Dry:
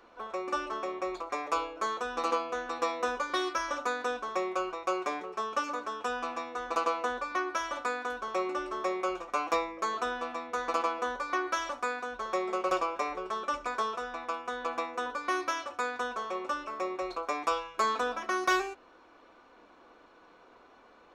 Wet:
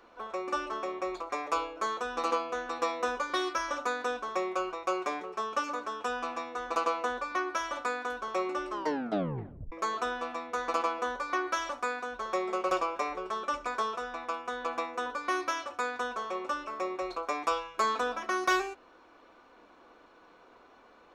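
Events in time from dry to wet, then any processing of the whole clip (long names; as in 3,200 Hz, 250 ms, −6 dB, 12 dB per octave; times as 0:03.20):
0:08.70: tape stop 1.02 s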